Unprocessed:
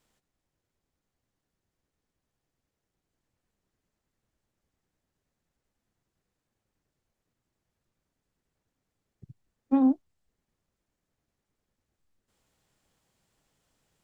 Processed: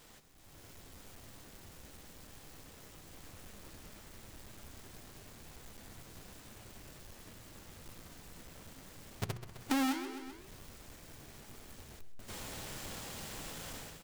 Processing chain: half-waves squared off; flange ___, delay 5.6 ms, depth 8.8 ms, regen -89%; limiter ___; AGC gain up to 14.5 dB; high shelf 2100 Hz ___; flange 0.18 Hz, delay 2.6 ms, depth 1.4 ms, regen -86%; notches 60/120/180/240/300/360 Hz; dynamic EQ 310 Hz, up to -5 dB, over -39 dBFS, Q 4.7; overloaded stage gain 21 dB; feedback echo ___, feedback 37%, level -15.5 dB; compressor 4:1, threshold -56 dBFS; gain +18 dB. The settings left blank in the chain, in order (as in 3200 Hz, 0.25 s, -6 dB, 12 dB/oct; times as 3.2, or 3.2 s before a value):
0.79 Hz, -26.5 dBFS, +6 dB, 0.129 s